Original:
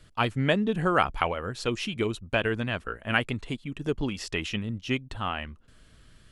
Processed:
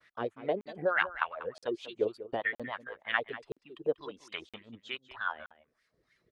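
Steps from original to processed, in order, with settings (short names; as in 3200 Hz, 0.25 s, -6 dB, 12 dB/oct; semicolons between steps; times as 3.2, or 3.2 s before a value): reverb removal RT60 1.5 s; expander -60 dBFS; in parallel at -2 dB: compressor, threshold -35 dBFS, peak gain reduction 16.5 dB; on the sum: formant shift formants +3 st; LFO band-pass sine 3.3 Hz 410–2100 Hz; on a send: echo 0.192 s -14.5 dB; on the sum: crackling interface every 0.97 s, samples 2048, zero, from 0.61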